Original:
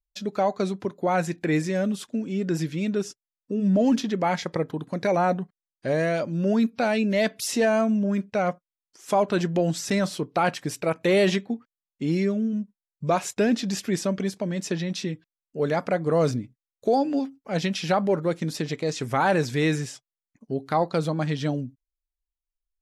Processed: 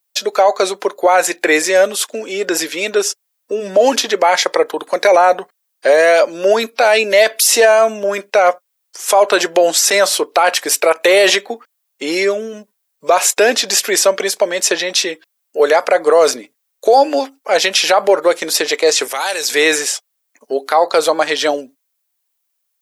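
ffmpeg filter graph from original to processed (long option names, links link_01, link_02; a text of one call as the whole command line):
ffmpeg -i in.wav -filter_complex "[0:a]asettb=1/sr,asplit=3[link_01][link_02][link_03];[link_01]atrim=end=19.074[link_04];[link_02]atrim=start=19.07:end=19.5,asetpts=PTS-STARTPTS,afade=type=in:duration=0.004:curve=qsin,afade=type=out:start_time=0.426:duration=0.004:curve=qsin,acrossover=split=140|3000[link_05][link_06][link_07];[link_06]acompressor=threshold=-44dB:ratio=2.5:attack=3.2:release=140:knee=2.83:detection=peak[link_08];[link_05][link_08][link_07]amix=inputs=3:normalize=0,equalizer=frequency=180:width=3.1:gain=-10[link_09];[link_03]atrim=start=19.496[link_10];[link_04][link_09]acrossfade=duration=0.004:curve1=hsin:curve2=qsin[link_11];[link_11][link_10]acrossfade=duration=0.004:curve1=qsin:curve2=hsin,highpass=frequency=460:width=0.5412,highpass=frequency=460:width=1.3066,highshelf=frequency=10000:gain=11.5,alimiter=level_in=19dB:limit=-1dB:release=50:level=0:latency=1,volume=-1dB" out.wav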